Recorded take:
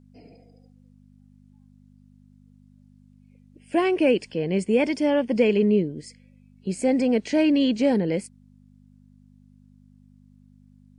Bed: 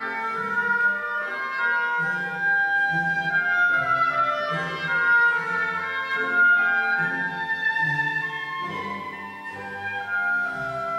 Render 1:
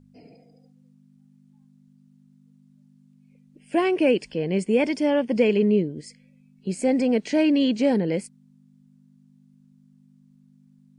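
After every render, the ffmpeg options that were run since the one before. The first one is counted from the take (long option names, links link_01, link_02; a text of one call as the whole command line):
ffmpeg -i in.wav -af "bandreject=frequency=50:width_type=h:width=4,bandreject=frequency=100:width_type=h:width=4" out.wav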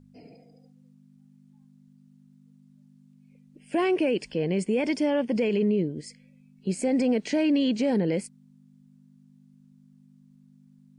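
ffmpeg -i in.wav -af "alimiter=limit=-17dB:level=0:latency=1:release=41" out.wav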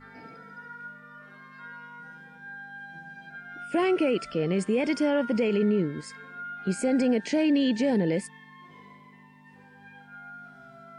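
ffmpeg -i in.wav -i bed.wav -filter_complex "[1:a]volume=-21dB[link_01];[0:a][link_01]amix=inputs=2:normalize=0" out.wav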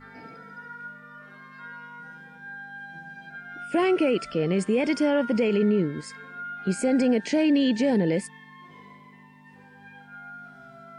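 ffmpeg -i in.wav -af "volume=2dB" out.wav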